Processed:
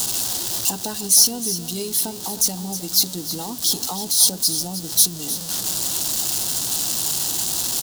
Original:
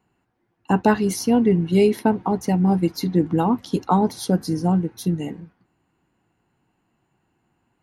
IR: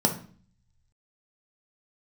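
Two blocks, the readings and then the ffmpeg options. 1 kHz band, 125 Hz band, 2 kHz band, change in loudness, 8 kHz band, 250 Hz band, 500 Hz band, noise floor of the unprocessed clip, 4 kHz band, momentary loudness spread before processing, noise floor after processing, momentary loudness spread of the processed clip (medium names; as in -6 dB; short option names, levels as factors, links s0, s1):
-10.0 dB, -11.5 dB, -5.0 dB, +1.5 dB, +21.0 dB, -12.5 dB, -12.5 dB, -71 dBFS, +16.5 dB, 7 LU, -33 dBFS, 9 LU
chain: -af "aeval=exprs='val(0)+0.5*0.0531*sgn(val(0))':c=same,equalizer=f=700:w=1.7:g=3.5,acompressor=threshold=0.0316:ratio=2,aecho=1:1:313:0.251,aexciter=amount=13.3:drive=5.4:freq=3400,volume=0.501"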